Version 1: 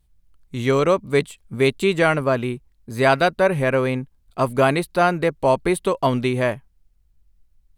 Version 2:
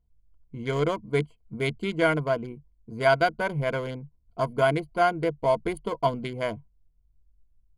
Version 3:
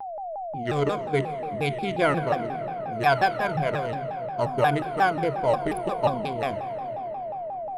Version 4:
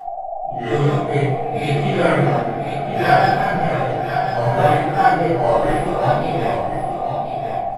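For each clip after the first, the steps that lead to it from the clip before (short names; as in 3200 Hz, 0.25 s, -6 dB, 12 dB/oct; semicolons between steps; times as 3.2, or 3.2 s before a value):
Wiener smoothing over 25 samples; ripple EQ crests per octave 1.8, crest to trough 13 dB; gain -7.5 dB
whine 710 Hz -32 dBFS; on a send at -9.5 dB: reverb RT60 4.4 s, pre-delay 27 ms; on the sum: shaped vibrato saw down 5.6 Hz, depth 250 cents
phase scrambler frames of 0.2 s; echo 1.04 s -8 dB; shoebox room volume 31 m³, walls mixed, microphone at 1.5 m; gain -3 dB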